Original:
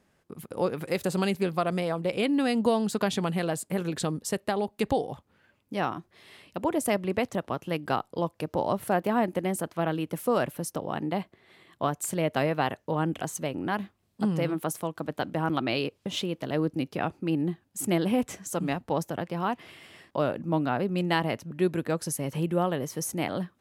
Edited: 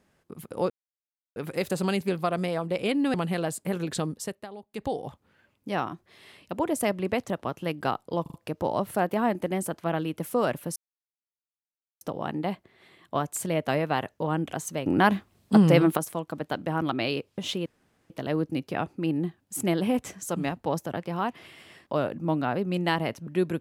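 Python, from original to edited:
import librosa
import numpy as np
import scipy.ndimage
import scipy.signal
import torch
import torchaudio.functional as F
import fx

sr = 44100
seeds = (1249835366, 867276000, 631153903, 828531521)

y = fx.edit(x, sr, fx.insert_silence(at_s=0.7, length_s=0.66),
    fx.cut(start_s=2.48, length_s=0.71),
    fx.fade_down_up(start_s=4.13, length_s=1.0, db=-14.0, fade_s=0.39),
    fx.stutter(start_s=8.27, slice_s=0.04, count=4),
    fx.insert_silence(at_s=10.69, length_s=1.25),
    fx.clip_gain(start_s=13.54, length_s=1.11, db=9.0),
    fx.insert_room_tone(at_s=16.34, length_s=0.44), tone=tone)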